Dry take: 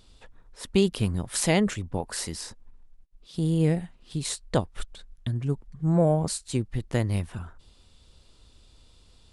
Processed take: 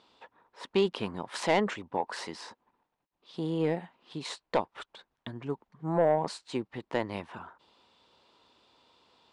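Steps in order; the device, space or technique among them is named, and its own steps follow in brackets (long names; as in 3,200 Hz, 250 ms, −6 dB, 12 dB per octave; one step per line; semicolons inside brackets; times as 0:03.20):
intercom (band-pass filter 310–3,500 Hz; parametric band 940 Hz +8.5 dB 0.56 octaves; soft clipping −15 dBFS, distortion −16 dB)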